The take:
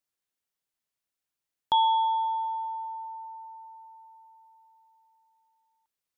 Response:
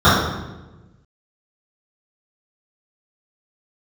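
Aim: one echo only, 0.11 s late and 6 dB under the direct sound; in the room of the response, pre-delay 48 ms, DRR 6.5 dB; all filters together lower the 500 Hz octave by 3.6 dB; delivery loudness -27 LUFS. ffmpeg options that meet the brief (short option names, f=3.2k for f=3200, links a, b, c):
-filter_complex "[0:a]equalizer=f=500:t=o:g=-5,aecho=1:1:110:0.501,asplit=2[a][b];[1:a]atrim=start_sample=2205,adelay=48[c];[b][c]afir=irnorm=-1:irlink=0,volume=-35.5dB[d];[a][d]amix=inputs=2:normalize=0,volume=3dB"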